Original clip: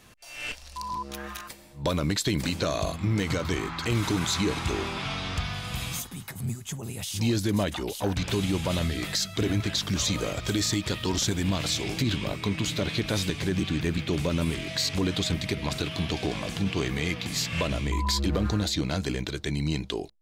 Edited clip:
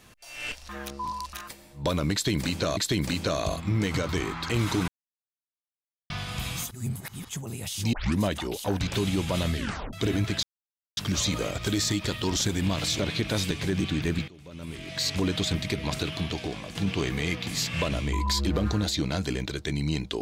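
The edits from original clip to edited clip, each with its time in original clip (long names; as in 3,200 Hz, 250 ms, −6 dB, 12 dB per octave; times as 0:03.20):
0:00.69–0:01.33: reverse
0:02.13–0:02.77: repeat, 2 plays
0:04.24–0:05.46: silence
0:06.07–0:06.65: reverse
0:07.29: tape start 0.26 s
0:08.93: tape stop 0.36 s
0:09.79: splice in silence 0.54 s
0:11.81–0:12.78: remove
0:14.07–0:14.87: fade in quadratic, from −24 dB
0:15.87–0:16.54: fade out, to −8 dB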